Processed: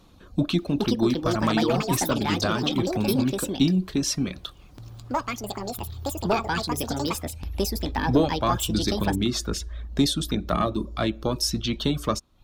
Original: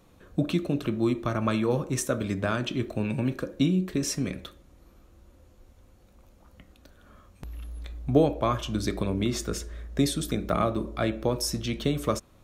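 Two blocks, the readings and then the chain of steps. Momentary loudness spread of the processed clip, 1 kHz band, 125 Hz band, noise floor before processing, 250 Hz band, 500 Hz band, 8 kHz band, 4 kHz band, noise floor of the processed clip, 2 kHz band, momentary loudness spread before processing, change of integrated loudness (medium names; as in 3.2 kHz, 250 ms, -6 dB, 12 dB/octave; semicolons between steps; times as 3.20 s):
10 LU, +6.0 dB, +2.0 dB, -57 dBFS, +3.5 dB, +2.0 dB, +4.5 dB, +8.0 dB, -49 dBFS, +5.0 dB, 10 LU, +2.5 dB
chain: single-diode clipper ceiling -12 dBFS; reverb removal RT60 0.55 s; treble shelf 12 kHz -9 dB; ever faster or slower copies 533 ms, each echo +6 st, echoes 2; graphic EQ 125/500/2000/4000/8000 Hz -4/-7/-7/+5/-4 dB; trim +7 dB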